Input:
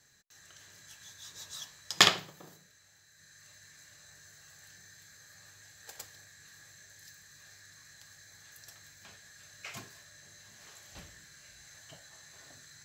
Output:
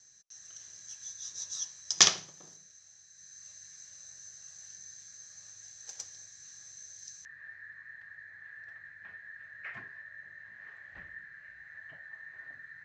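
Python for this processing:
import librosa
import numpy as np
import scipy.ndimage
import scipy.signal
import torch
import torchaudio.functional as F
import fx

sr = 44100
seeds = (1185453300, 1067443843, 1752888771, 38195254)

y = fx.lowpass_res(x, sr, hz=fx.steps((0.0, 6000.0), (7.25, 1800.0)), q=13.0)
y = F.gain(torch.from_numpy(y), -6.5).numpy()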